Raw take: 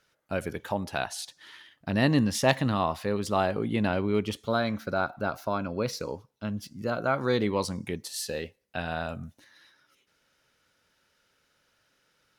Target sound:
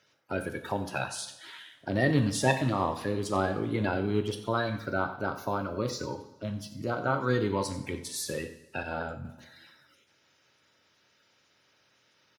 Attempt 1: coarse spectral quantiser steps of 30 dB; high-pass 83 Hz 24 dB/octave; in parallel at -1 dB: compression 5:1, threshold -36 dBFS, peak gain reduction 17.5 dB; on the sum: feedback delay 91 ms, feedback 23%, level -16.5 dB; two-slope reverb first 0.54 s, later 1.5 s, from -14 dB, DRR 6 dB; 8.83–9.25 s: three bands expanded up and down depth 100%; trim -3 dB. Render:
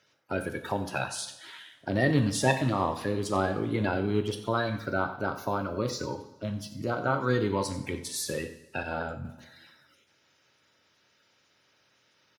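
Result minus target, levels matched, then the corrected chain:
compression: peak gain reduction -6 dB
coarse spectral quantiser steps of 30 dB; high-pass 83 Hz 24 dB/octave; in parallel at -1 dB: compression 5:1, threshold -43.5 dBFS, peak gain reduction 23.5 dB; on the sum: feedback delay 91 ms, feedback 23%, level -16.5 dB; two-slope reverb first 0.54 s, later 1.5 s, from -14 dB, DRR 6 dB; 8.83–9.25 s: three bands expanded up and down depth 100%; trim -3 dB

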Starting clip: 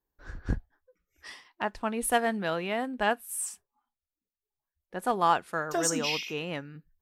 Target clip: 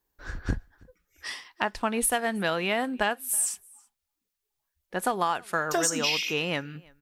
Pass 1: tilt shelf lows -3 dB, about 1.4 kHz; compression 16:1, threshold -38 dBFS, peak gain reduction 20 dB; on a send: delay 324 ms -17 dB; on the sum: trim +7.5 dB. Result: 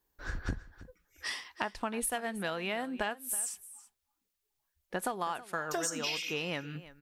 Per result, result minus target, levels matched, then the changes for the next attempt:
compression: peak gain reduction +8.5 dB; echo-to-direct +10 dB
change: compression 16:1, threshold -29 dBFS, peak gain reduction 11.5 dB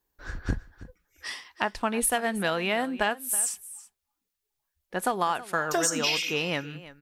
echo-to-direct +10 dB
change: delay 324 ms -27 dB

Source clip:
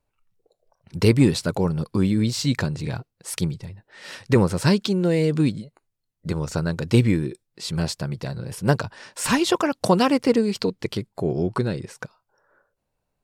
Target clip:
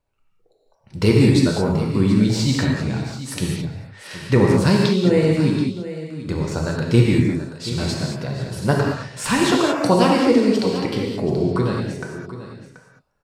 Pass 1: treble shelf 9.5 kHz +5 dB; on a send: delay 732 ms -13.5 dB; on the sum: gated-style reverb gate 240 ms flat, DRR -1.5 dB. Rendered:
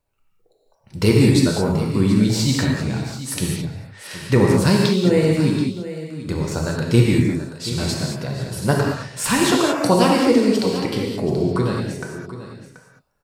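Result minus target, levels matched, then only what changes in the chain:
8 kHz band +4.0 dB
change: treble shelf 9.5 kHz -7 dB

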